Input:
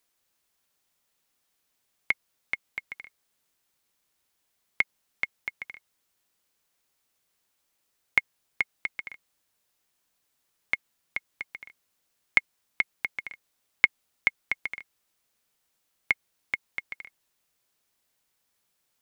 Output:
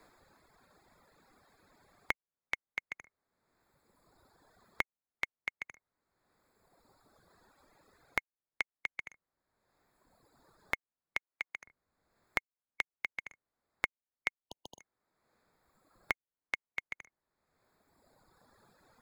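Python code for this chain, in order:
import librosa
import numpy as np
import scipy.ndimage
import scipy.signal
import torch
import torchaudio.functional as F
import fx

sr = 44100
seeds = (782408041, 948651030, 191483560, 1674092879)

y = fx.wiener(x, sr, points=15)
y = fx.brickwall_bandstop(y, sr, low_hz=1000.0, high_hz=2900.0, at=(14.39, 14.79), fade=0.02)
y = fx.dereverb_blind(y, sr, rt60_s=1.8)
y = fx.highpass(y, sr, hz=370.0, slope=6, at=(11.17, 11.66))
y = fx.band_squash(y, sr, depth_pct=100)
y = y * librosa.db_to_amplitude(-5.5)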